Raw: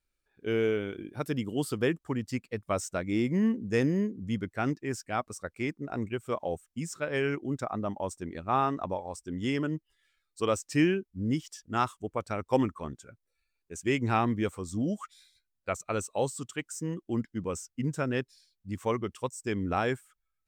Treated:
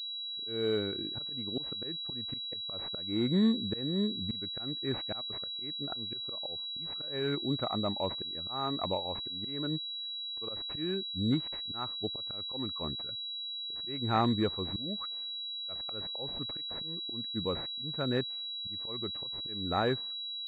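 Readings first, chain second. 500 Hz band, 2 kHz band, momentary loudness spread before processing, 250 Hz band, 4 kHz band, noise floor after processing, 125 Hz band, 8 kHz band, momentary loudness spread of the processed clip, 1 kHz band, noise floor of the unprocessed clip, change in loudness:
-5.5 dB, -9.5 dB, 10 LU, -4.0 dB, +14.0 dB, -40 dBFS, -4.5 dB, under -25 dB, 6 LU, -5.5 dB, -82 dBFS, -2.0 dB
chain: auto swell 0.347 s; pulse-width modulation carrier 3900 Hz

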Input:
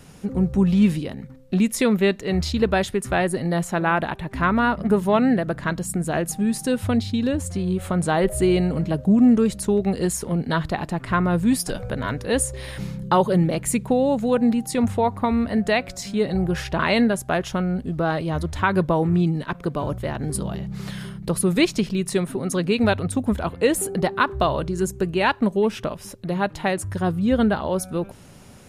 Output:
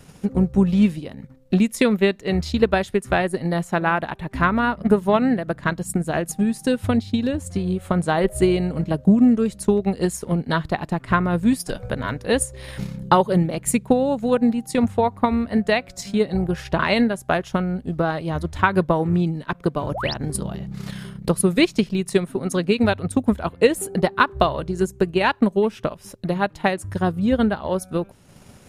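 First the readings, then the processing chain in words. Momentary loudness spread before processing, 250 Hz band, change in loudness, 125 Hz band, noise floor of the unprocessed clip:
8 LU, +0.5 dB, +1.0 dB, 0.0 dB, -43 dBFS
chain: transient shaper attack +6 dB, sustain -6 dB; painted sound rise, 19.94–20.14, 470–5900 Hz -27 dBFS; gain -1 dB

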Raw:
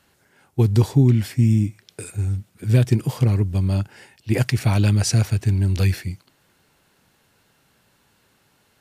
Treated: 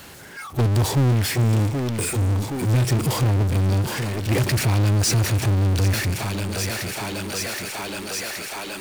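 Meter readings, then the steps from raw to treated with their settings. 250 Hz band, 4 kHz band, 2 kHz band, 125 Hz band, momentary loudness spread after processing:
-2.0 dB, +7.0 dB, +6.5 dB, -1.0 dB, 9 LU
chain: spectral noise reduction 25 dB; thinning echo 0.772 s, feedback 69%, high-pass 320 Hz, level -12 dB; power-law curve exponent 0.35; gain -8 dB

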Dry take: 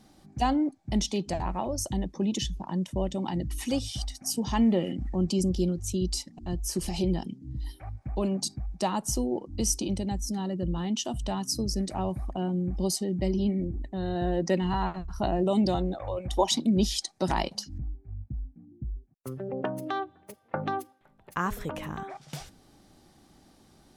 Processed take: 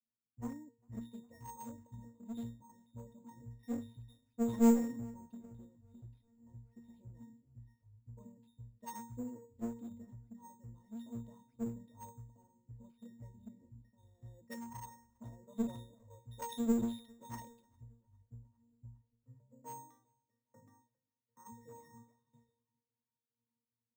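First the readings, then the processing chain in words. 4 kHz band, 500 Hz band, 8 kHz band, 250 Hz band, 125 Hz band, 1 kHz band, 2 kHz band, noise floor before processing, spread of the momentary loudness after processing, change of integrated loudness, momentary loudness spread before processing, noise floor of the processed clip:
-27.0 dB, -15.0 dB, -21.0 dB, -10.5 dB, -18.0 dB, -18.0 dB, -20.0 dB, -60 dBFS, 20 LU, -9.5 dB, 13 LU, under -85 dBFS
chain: high shelf 5300 Hz -11.5 dB; octave resonator A#, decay 0.51 s; one-sided clip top -44.5 dBFS; on a send: darkening echo 0.406 s, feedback 69%, low-pass 4100 Hz, level -18.5 dB; on the sum: careless resampling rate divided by 6×, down none, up hold; three-band expander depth 100%

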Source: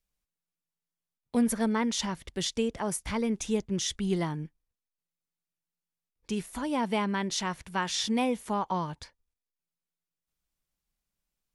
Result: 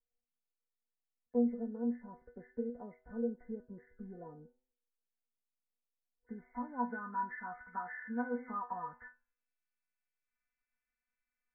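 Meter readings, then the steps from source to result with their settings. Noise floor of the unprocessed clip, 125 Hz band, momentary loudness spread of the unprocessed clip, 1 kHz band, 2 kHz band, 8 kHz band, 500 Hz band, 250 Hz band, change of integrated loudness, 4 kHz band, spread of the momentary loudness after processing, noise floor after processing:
under -85 dBFS, -19.0 dB, 8 LU, -7.5 dB, -9.0 dB, under -40 dB, -8.5 dB, -9.0 dB, -9.0 dB, under -40 dB, 17 LU, under -85 dBFS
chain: nonlinear frequency compression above 1300 Hz 4:1; de-hum 127.7 Hz, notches 13; compressor, threshold -29 dBFS, peak gain reduction 8.5 dB; metallic resonator 240 Hz, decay 0.23 s, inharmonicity 0.002; low-pass sweep 550 Hz -> 1300 Hz, 5.93–7.16; gain +2 dB

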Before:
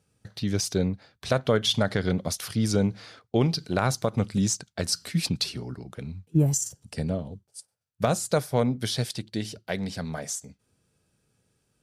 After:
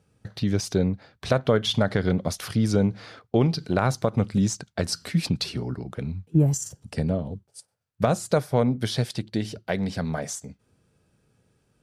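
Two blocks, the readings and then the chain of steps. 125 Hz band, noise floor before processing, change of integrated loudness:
+2.5 dB, -74 dBFS, +1.5 dB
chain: high shelf 3200 Hz -9 dB; in parallel at 0 dB: compressor, threshold -30 dBFS, peak gain reduction 13.5 dB

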